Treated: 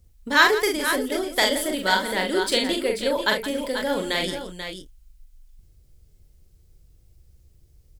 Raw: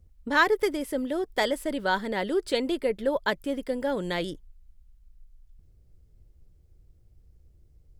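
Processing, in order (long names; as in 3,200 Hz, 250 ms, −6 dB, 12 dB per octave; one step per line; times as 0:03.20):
high-shelf EQ 2,100 Hz +12 dB
on a send: multi-tap delay 42/71/168/487/514 ms −4/−16.5/−14/−9/−13.5 dB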